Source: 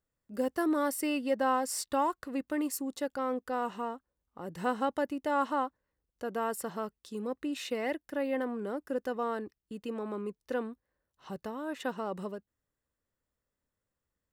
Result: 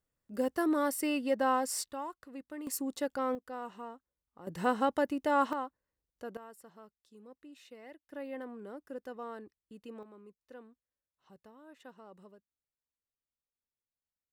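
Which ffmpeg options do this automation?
-af "asetnsamples=n=441:p=0,asendcmd='1.91 volume volume -11dB;2.67 volume volume 0dB;3.35 volume volume -8.5dB;4.47 volume volume 1.5dB;5.53 volume volume -6dB;6.37 volume volume -18dB;8.1 volume volume -9.5dB;10.03 volume volume -17.5dB',volume=0.944"

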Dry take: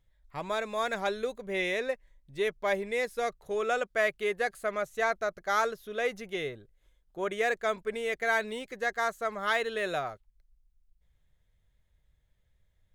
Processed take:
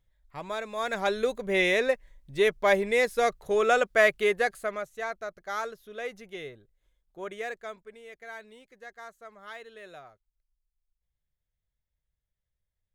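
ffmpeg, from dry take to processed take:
-af "volume=2.11,afade=t=in:st=0.75:d=0.59:silence=0.375837,afade=t=out:st=4.19:d=0.71:silence=0.251189,afade=t=out:st=7.3:d=0.63:silence=0.334965"

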